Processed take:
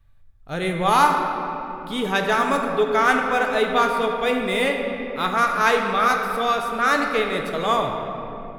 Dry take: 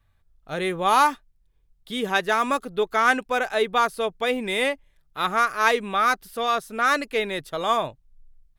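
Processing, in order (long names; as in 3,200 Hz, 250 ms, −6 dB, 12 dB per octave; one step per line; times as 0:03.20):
0:02.90–0:05.39: running median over 3 samples
low-shelf EQ 150 Hz +8.5 dB
convolution reverb RT60 3.2 s, pre-delay 7 ms, DRR 2 dB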